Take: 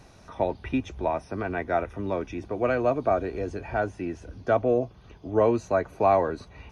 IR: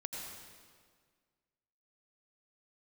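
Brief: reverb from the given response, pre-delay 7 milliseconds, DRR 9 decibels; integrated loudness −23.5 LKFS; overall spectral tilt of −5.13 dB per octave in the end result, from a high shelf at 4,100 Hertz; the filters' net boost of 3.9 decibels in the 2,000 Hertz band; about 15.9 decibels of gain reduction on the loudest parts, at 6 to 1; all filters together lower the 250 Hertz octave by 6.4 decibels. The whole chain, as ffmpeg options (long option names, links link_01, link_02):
-filter_complex "[0:a]equalizer=frequency=250:width_type=o:gain=-9,equalizer=frequency=2000:width_type=o:gain=6.5,highshelf=frequency=4100:gain=-3,acompressor=threshold=-35dB:ratio=6,asplit=2[link_01][link_02];[1:a]atrim=start_sample=2205,adelay=7[link_03];[link_02][link_03]afir=irnorm=-1:irlink=0,volume=-9dB[link_04];[link_01][link_04]amix=inputs=2:normalize=0,volume=16dB"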